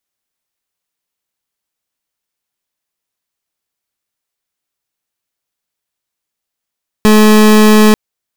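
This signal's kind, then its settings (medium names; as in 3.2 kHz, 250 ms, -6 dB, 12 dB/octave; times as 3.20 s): pulse 214 Hz, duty 30% -5.5 dBFS 0.89 s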